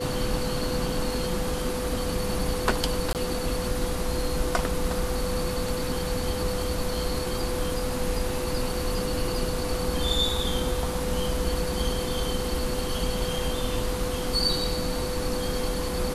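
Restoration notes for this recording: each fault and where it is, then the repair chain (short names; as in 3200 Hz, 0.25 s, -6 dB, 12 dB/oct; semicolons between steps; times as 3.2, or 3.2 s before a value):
tone 500 Hz -31 dBFS
3.13–3.15 gap 18 ms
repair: notch 500 Hz, Q 30; interpolate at 3.13, 18 ms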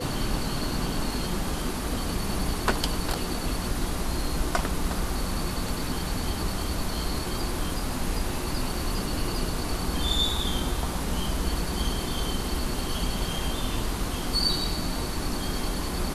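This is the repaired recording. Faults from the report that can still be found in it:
none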